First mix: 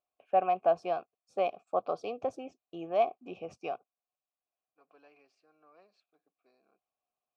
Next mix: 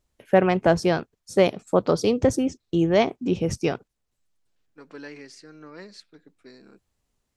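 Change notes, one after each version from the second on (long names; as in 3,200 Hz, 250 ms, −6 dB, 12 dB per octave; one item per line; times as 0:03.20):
second voice +4.5 dB
master: remove formant filter a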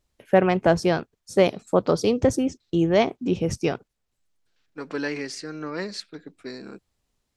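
second voice +11.5 dB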